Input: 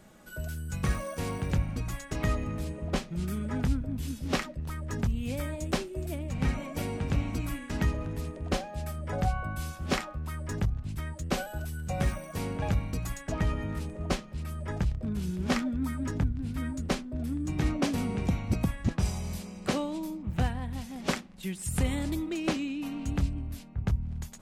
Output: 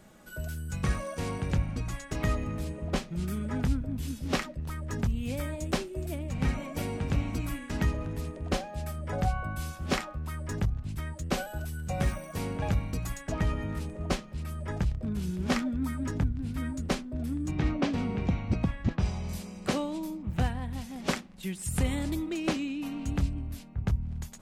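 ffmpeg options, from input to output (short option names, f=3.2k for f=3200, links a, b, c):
-filter_complex "[0:a]asettb=1/sr,asplit=3[a][b][c];[a]atrim=end=0.734[d];[b]atrim=start=0.73:end=2.1,asetpts=PTS-STARTPTS,afade=t=in:d=0.004:c=qsin,afade=t=out:st=1.366:d=0.004:c=qsin,lowpass=10k[e];[c]atrim=start=2.096[f];[d][e]acrossfade=d=0.004:c1=hsin:c2=qsin[g];[g][f]acrossfade=d=0.004:c1=qsin:c2=hsin,asettb=1/sr,asplit=3[h][i][j];[h]atrim=end=17.514[k];[i]atrim=start=17.51:end=19.29,asetpts=PTS-STARTPTS,afade=t=in:d=0.004:c=qsin,afade=t=out:st=1.776:d=0.004:c=qsin,lowpass=4.2k[l];[j]atrim=start=19.286[m];[k][l]acrossfade=d=0.004:c1=hsin:c2=qsin[n];[n][m]acrossfade=d=0.004:c1=qsin:c2=hsin"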